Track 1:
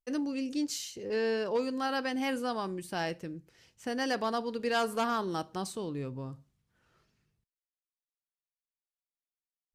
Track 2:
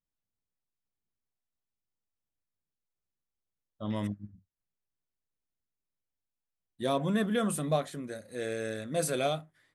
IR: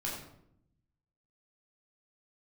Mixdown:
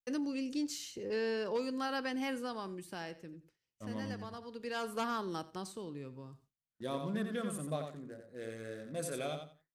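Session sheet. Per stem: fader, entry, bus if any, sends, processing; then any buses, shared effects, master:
-4.0 dB, 0.00 s, no send, echo send -22 dB, three-band squash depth 40%; auto duck -10 dB, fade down 1.70 s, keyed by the second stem
-8.5 dB, 0.00 s, no send, echo send -6.5 dB, Wiener smoothing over 15 samples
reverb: off
echo: feedback echo 88 ms, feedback 21%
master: bell 710 Hz -3.5 dB 0.35 oct; gate with hold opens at -54 dBFS

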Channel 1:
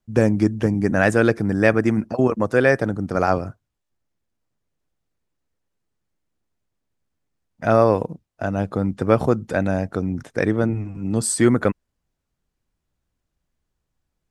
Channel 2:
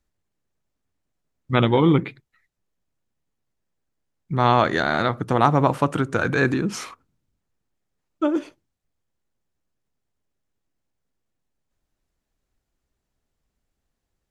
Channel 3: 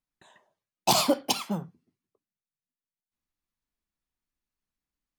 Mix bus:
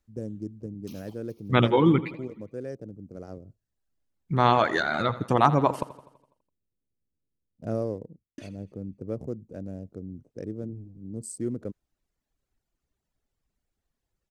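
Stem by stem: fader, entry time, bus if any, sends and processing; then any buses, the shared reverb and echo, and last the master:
3.46 s -17.5 dB -> 3.71 s -6 dB -> 7.53 s -6 dB -> 8.02 s -14.5 dB, 0.00 s, no send, no echo send, Wiener smoothing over 25 samples; band shelf 1700 Hz -15.5 dB 2.8 oct
-1.5 dB, 0.00 s, muted 5.83–8.38, no send, echo send -16.5 dB, reverb removal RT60 1.6 s
-11.0 dB, 0.00 s, no send, echo send -14.5 dB, envelope phaser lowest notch 330 Hz, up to 1500 Hz; compressor 3:1, threshold -34 dBFS, peak gain reduction 11.5 dB; spectral gate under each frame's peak -15 dB weak; auto duck -16 dB, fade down 0.30 s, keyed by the second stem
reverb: off
echo: feedback echo 83 ms, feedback 55%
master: dry

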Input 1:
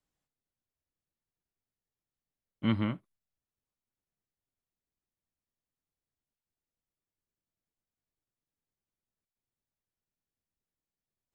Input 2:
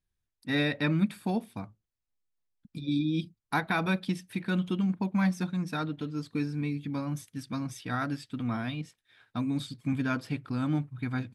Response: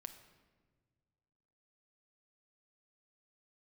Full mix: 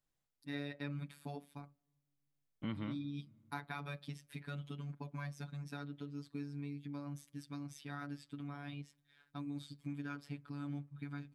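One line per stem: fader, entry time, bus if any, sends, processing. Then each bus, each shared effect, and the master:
-4.5 dB, 0.00 s, send -8.5 dB, dry
-6.5 dB, 0.00 s, send -21.5 dB, robotiser 143 Hz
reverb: on, pre-delay 6 ms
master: compressor 2:1, threshold -44 dBFS, peak gain reduction 10.5 dB

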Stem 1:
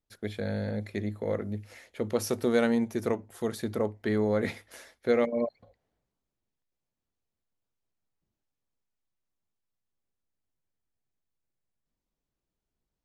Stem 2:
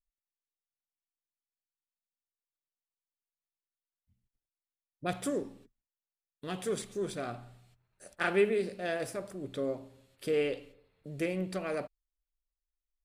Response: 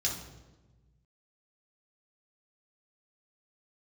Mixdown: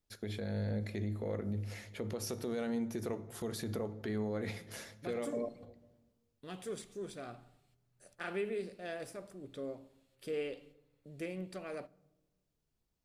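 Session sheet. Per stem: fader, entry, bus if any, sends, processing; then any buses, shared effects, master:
+0.5 dB, 0.00 s, send -16 dB, compressor 5:1, threshold -33 dBFS, peak gain reduction 12.5 dB
-8.5 dB, 0.00 s, send -23.5 dB, dry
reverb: on, RT60 1.2 s, pre-delay 3 ms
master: limiter -28.5 dBFS, peak gain reduction 8 dB

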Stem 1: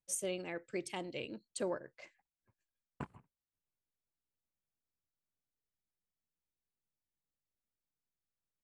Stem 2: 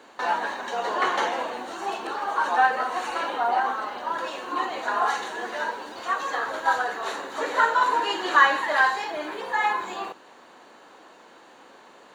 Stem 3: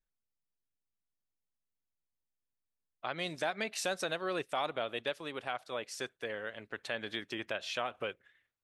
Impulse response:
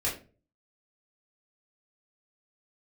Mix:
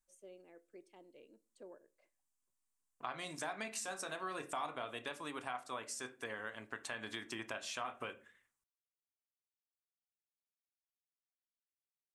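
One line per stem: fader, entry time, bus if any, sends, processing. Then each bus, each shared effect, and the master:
-18.0 dB, 0.00 s, no bus, send -23.5 dB, HPF 360 Hz 12 dB/oct; tilt shelf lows +7.5 dB, about 690 Hz
off
-5.0 dB, 0.00 s, bus A, send -17 dB, ten-band EQ 250 Hz +6 dB, 500 Hz -6 dB, 1000 Hz +10 dB, 4000 Hz -4 dB, 8000 Hz +11 dB
bus A: 0.0 dB, high shelf 5200 Hz +11.5 dB; compressor, threshold -40 dBFS, peak gain reduction 14 dB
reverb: on, RT60 0.35 s, pre-delay 3 ms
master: high shelf 8900 Hz -7.5 dB

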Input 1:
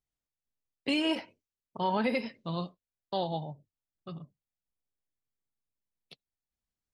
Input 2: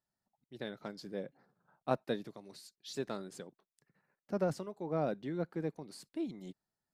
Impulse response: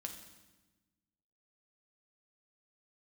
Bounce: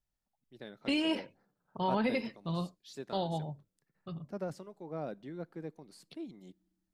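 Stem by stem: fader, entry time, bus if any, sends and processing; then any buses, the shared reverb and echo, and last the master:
-3.0 dB, 0.00 s, no send, low shelf 120 Hz +10.5 dB
-6.0 dB, 0.00 s, send -21.5 dB, dry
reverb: on, RT60 1.2 s, pre-delay 5 ms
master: dry

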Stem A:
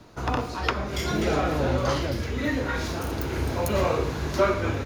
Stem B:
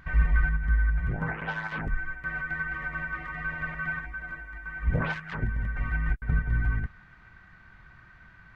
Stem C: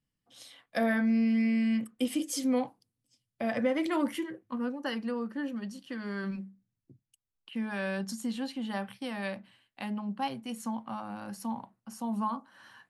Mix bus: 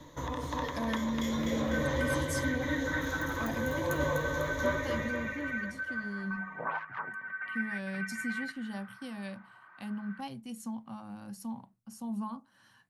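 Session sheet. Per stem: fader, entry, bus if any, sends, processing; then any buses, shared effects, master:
-2.5 dB, 0.00 s, bus A, no send, echo send -10 dB, ripple EQ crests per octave 1.1, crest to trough 14 dB; auto duck -13 dB, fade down 1.00 s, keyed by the third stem
+1.5 dB, 1.65 s, no bus, no send, no echo send, LFO band-pass sine 0.35 Hz 940–2300 Hz; vocal rider 0.5 s; HPF 150 Hz 24 dB/oct
-9.5 dB, 0.00 s, muted 4.04–4.63, bus A, no send, no echo send, tone controls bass +11 dB, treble +7 dB
bus A: 0.0 dB, limiter -27 dBFS, peak gain reduction 8.5 dB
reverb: off
echo: feedback echo 0.249 s, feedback 54%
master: dry

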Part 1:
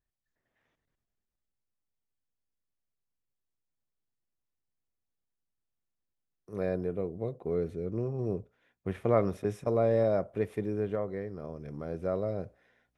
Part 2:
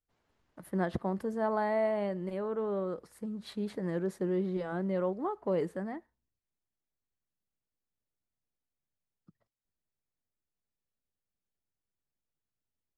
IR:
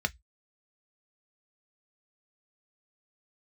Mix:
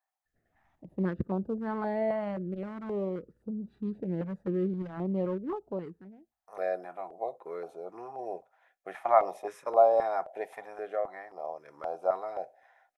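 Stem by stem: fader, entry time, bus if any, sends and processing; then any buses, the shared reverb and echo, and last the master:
+1.5 dB, 0.00 s, send -13 dB, resonant high-pass 770 Hz, resonance Q 4.9; high shelf 2500 Hz +10 dB
+3.0 dB, 0.25 s, no send, Wiener smoothing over 41 samples; auto duck -23 dB, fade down 0.95 s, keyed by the first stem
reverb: on, RT60 0.10 s, pre-delay 3 ms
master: high shelf 2500 Hz -10.5 dB; stepped notch 3.8 Hz 360–1900 Hz

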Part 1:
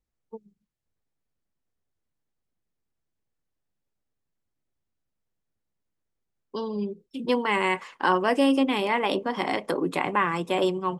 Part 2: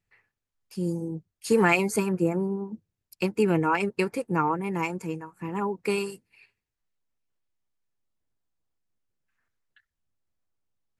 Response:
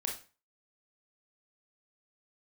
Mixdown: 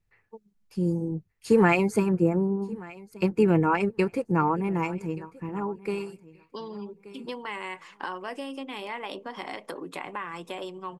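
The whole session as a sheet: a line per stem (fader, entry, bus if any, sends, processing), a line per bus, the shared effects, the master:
-1.0 dB, 0.00 s, no send, no echo send, compressor 4:1, threshold -30 dBFS, peak gain reduction 12 dB
+1.5 dB, 0.00 s, no send, echo send -21.5 dB, tilt -3 dB/oct; auto duck -8 dB, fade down 1.80 s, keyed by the first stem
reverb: off
echo: feedback echo 1.179 s, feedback 17%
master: low shelf 480 Hz -6.5 dB

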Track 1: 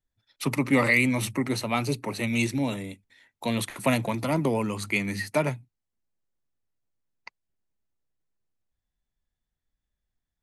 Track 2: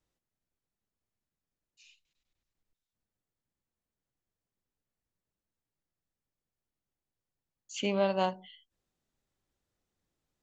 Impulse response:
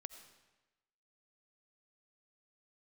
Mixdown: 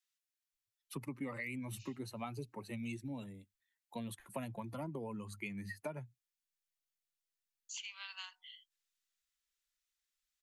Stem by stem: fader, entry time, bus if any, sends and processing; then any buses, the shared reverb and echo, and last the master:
-8.5 dB, 0.50 s, no send, per-bin expansion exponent 1.5; bell 5100 Hz -8 dB 1.5 oct
+1.5 dB, 0.00 s, no send, Bessel high-pass 2200 Hz, order 8; compressor, threshold -44 dBFS, peak gain reduction 8.5 dB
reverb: off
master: compressor 6:1, threshold -39 dBFS, peak gain reduction 12 dB

